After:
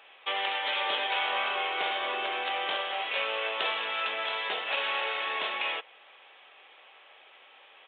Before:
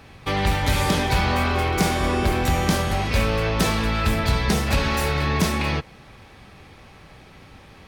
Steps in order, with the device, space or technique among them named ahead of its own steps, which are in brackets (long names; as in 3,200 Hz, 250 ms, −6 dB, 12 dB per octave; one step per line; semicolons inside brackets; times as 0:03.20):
musical greeting card (downsampling to 8,000 Hz; high-pass filter 510 Hz 24 dB per octave; parametric band 3,000 Hz +8.5 dB 0.56 octaves)
level −6.5 dB